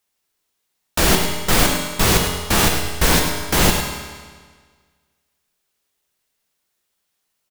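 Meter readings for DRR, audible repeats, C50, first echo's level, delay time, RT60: 1.0 dB, 1, 3.0 dB, -8.5 dB, 103 ms, 1.6 s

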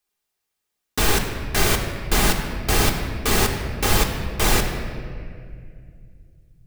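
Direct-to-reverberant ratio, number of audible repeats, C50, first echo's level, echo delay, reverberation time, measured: 1.5 dB, no echo, 6.0 dB, no echo, no echo, 2.2 s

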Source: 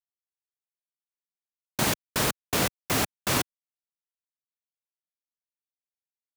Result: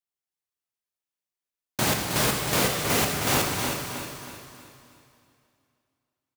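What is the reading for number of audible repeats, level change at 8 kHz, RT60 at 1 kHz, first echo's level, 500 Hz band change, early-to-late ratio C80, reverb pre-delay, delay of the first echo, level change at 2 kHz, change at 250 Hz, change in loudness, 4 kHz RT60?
4, +3.5 dB, 2.8 s, -6.5 dB, +4.0 dB, 1.0 dB, 7 ms, 316 ms, +3.5 dB, +3.0 dB, +2.5 dB, 2.7 s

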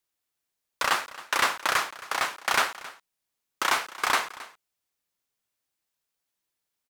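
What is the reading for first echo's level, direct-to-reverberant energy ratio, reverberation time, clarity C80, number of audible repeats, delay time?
-18.0 dB, no reverb, no reverb, no reverb, 1, 269 ms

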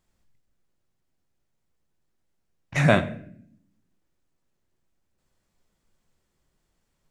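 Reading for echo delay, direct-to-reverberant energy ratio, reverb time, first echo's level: no echo, 9.0 dB, 0.65 s, no echo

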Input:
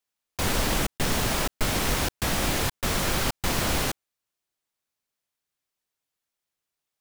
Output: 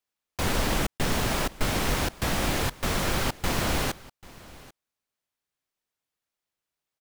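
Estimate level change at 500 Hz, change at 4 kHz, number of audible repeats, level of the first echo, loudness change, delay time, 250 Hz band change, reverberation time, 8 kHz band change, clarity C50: 0.0 dB, -2.0 dB, 1, -21.0 dB, -1.5 dB, 790 ms, 0.0 dB, no reverb, -3.5 dB, no reverb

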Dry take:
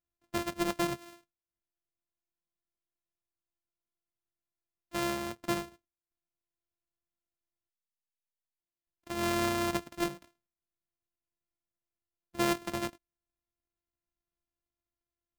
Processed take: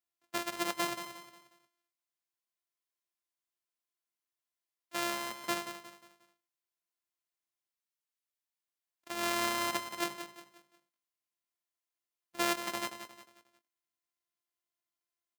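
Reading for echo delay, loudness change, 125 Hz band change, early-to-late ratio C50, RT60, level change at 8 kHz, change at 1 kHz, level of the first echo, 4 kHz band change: 179 ms, -1.5 dB, -13.5 dB, no reverb, no reverb, +2.0 dB, 0.0 dB, -10.0 dB, +2.0 dB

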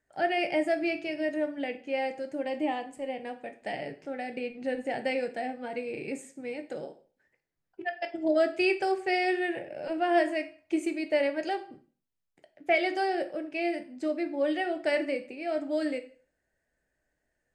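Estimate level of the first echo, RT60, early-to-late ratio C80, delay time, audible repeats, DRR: no echo, 0.40 s, 18.5 dB, no echo, no echo, 8.0 dB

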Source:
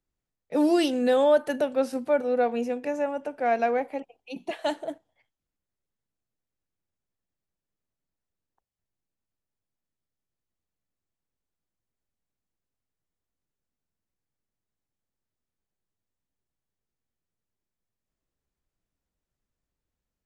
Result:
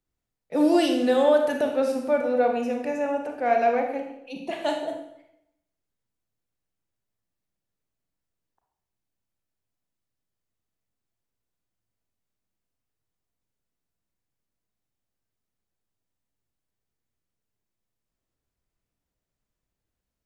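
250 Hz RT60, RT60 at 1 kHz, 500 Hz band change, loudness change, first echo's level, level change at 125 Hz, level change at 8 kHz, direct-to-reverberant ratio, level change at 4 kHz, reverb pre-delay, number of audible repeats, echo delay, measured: 0.85 s, 0.80 s, +1.5 dB, +1.5 dB, no echo, no reading, no reading, 2.5 dB, +2.0 dB, 31 ms, no echo, no echo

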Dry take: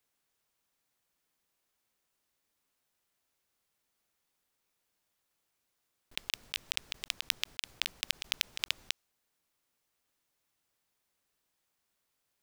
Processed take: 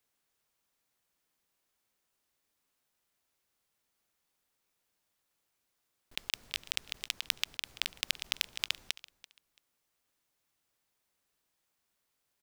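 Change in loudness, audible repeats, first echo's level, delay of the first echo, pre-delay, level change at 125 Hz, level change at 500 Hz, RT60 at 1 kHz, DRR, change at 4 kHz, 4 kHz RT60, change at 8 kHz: 0.0 dB, 2, -20.0 dB, 336 ms, no reverb, 0.0 dB, 0.0 dB, no reverb, no reverb, 0.0 dB, no reverb, 0.0 dB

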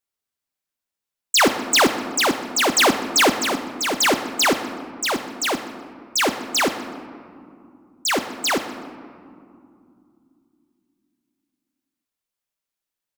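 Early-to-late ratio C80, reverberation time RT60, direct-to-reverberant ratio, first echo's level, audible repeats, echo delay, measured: 10.5 dB, 2.6 s, 8.0 dB, -19.0 dB, 1, 125 ms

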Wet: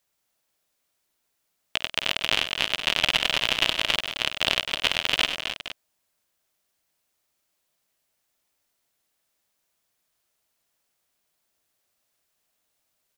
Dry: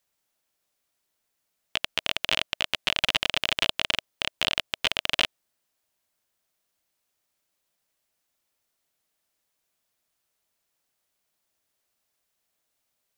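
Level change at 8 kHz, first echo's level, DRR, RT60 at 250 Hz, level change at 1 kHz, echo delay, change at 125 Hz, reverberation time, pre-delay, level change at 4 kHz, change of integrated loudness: +3.0 dB, -14.5 dB, no reverb, no reverb, +2.5 dB, 51 ms, +3.0 dB, no reverb, no reverb, +2.5 dB, +2.5 dB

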